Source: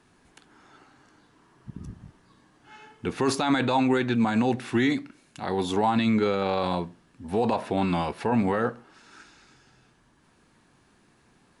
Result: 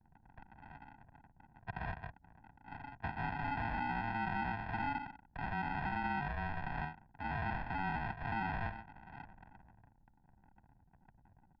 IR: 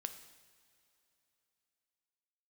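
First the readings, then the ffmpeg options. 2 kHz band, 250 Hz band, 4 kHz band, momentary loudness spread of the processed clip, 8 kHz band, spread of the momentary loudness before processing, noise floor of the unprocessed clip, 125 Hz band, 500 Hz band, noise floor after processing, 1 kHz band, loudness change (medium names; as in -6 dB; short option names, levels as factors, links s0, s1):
-6.0 dB, -19.5 dB, -19.5 dB, 17 LU, under -35 dB, 14 LU, -62 dBFS, -9.5 dB, -23.5 dB, -69 dBFS, -8.5 dB, -14.0 dB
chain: -filter_complex "[0:a]acompressor=threshold=0.0447:ratio=6,aresample=11025,acrusher=samples=19:mix=1:aa=0.000001,aresample=44100,alimiter=level_in=2:limit=0.0631:level=0:latency=1:release=49,volume=0.501,asplit=2[s0][s1];[s1]asoftclip=type=tanh:threshold=0.0119,volume=0.501[s2];[s0][s2]amix=inputs=2:normalize=0,afreqshift=-16,anlmdn=0.000631,lowpass=f=1800:t=q:w=2.2,lowshelf=f=420:t=q:w=1.5:g=-6.5,bandreject=f=1400:w=25,aecho=1:1:1.2:0.73,volume=0.794"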